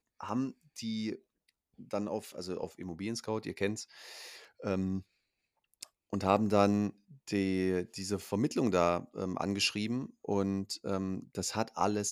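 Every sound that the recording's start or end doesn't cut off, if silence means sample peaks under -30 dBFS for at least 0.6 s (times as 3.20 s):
1.93–3.72 s
4.66–4.98 s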